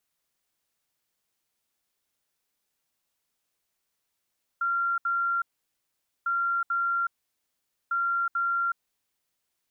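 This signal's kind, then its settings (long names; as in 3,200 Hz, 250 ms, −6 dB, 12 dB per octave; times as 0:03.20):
beeps in groups sine 1,380 Hz, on 0.37 s, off 0.07 s, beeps 2, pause 0.84 s, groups 3, −23.5 dBFS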